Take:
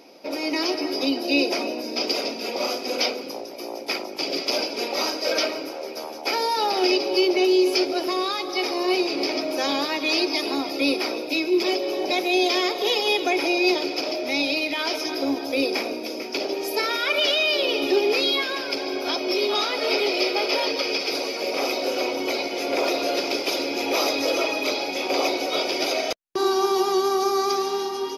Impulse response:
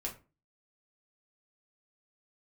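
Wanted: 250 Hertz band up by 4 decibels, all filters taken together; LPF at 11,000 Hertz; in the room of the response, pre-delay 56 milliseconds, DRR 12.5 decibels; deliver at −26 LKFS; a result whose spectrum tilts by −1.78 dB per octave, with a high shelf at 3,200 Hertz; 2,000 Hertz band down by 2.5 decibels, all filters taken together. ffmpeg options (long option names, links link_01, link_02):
-filter_complex "[0:a]lowpass=11000,equalizer=frequency=250:width_type=o:gain=6,equalizer=frequency=2000:width_type=o:gain=-5.5,highshelf=frequency=3200:gain=4.5,asplit=2[link_01][link_02];[1:a]atrim=start_sample=2205,adelay=56[link_03];[link_02][link_03]afir=irnorm=-1:irlink=0,volume=-13dB[link_04];[link_01][link_04]amix=inputs=2:normalize=0,volume=-4.5dB"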